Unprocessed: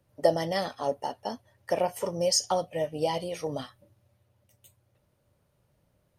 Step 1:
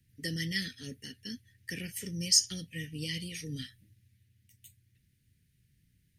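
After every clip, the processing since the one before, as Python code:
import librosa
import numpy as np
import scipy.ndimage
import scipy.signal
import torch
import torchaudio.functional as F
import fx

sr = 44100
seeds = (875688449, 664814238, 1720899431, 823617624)

y = scipy.signal.sosfilt(scipy.signal.ellip(3, 1.0, 40, [380.0, 1800.0], 'bandstop', fs=sr, output='sos'), x)
y = fx.peak_eq(y, sr, hz=370.0, db=-14.5, octaves=0.6)
y = y * librosa.db_to_amplitude(2.5)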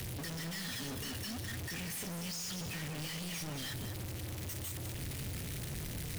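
y = np.sign(x) * np.sqrt(np.mean(np.square(x)))
y = y + 10.0 ** (-9.5 / 20.0) * np.pad(y, (int(196 * sr / 1000.0), 0))[:len(y)]
y = y * librosa.db_to_amplitude(-3.0)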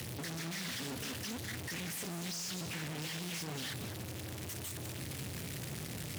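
y = scipy.signal.sosfilt(scipy.signal.butter(2, 110.0, 'highpass', fs=sr, output='sos'), x)
y = fx.doppler_dist(y, sr, depth_ms=0.42)
y = y * librosa.db_to_amplitude(1.0)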